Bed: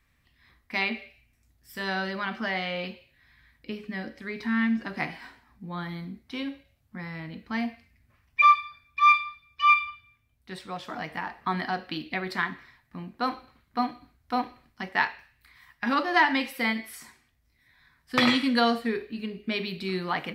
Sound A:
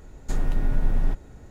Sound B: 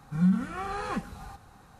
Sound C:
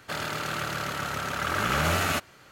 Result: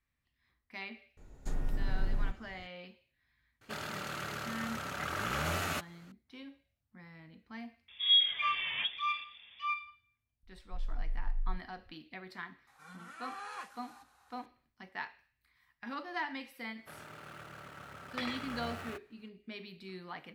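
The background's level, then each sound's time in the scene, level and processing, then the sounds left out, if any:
bed −16 dB
0:01.17: mix in A −10 dB
0:03.61: mix in C −9 dB
0:07.88: mix in B −3 dB + voice inversion scrambler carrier 3,500 Hz
0:10.43: mix in A −7.5 dB + spectral peaks only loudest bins 1
0:12.67: mix in B −7 dB + high-pass filter 920 Hz
0:16.78: mix in C −17.5 dB + running median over 9 samples

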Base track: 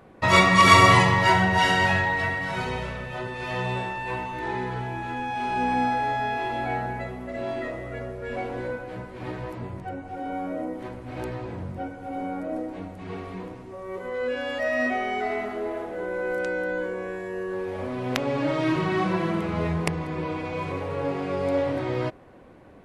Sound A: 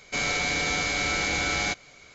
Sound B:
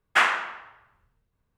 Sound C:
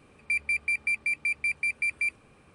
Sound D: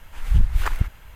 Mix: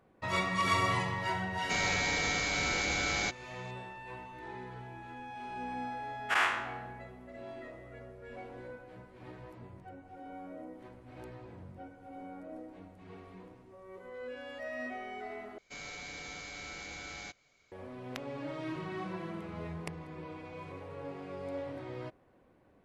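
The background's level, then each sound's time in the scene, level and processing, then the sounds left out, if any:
base track −15 dB
0:01.57: mix in A −5.5 dB
0:06.20: mix in B −13.5 dB + every bin's largest magnitude spread in time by 120 ms
0:15.58: overwrite with A −18 dB
not used: C, D

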